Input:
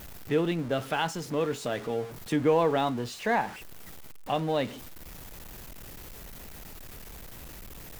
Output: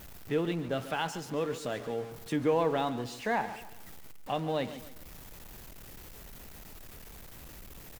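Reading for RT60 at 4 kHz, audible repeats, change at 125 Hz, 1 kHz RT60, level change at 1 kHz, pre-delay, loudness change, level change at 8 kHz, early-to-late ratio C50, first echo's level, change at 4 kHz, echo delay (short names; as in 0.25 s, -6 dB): none, 3, -4.0 dB, none, -4.0 dB, none, -4.0 dB, -4.0 dB, none, -14.0 dB, -4.0 dB, 0.14 s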